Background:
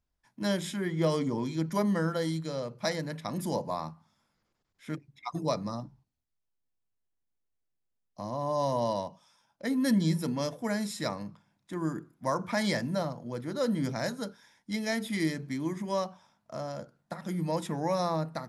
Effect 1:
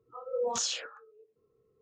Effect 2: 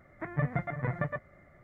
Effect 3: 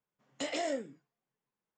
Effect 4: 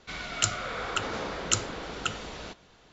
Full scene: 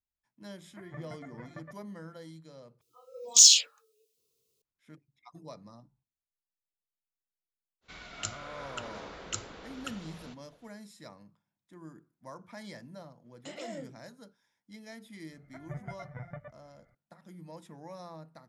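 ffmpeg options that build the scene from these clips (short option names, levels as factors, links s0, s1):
-filter_complex "[2:a]asplit=2[s0][s1];[0:a]volume=0.15[s2];[s0]highpass=110[s3];[1:a]aexciter=amount=15:drive=8.6:freq=2600[s4];[s1]aecho=1:1:1.4:0.56[s5];[s2]asplit=2[s6][s7];[s6]atrim=end=2.814[s8];[s4]atrim=end=1.81,asetpts=PTS-STARTPTS,volume=0.224[s9];[s7]atrim=start=4.616[s10];[s3]atrim=end=1.63,asetpts=PTS-STARTPTS,volume=0.2,afade=t=in:d=0.004:c=hsin,afade=t=out:st=1.626:d=0.004:c=hsin,adelay=550[s11];[4:a]atrim=end=2.92,asetpts=PTS-STARTPTS,volume=0.299,afade=t=in:d=0.05,afade=t=out:st=2.87:d=0.05,adelay=7810[s12];[3:a]atrim=end=1.77,asetpts=PTS-STARTPTS,volume=0.376,afade=t=in:d=0.004:c=hsin,afade=t=out:st=1.766:d=0.004:c=hsin,adelay=13050[s13];[s5]atrim=end=1.63,asetpts=PTS-STARTPTS,volume=0.224,afade=t=in:d=0.004:c=hsin,afade=t=out:st=1.626:d=0.004:c=hsin,adelay=15320[s14];[s8][s9]acrossfade=d=0.004:c1=hsin:c2=hsin[s15];[s15][s10]acrossfade=d=0.004:c1=hsin:c2=hsin[s16];[s16][s11][s12][s13][s14]amix=inputs=5:normalize=0"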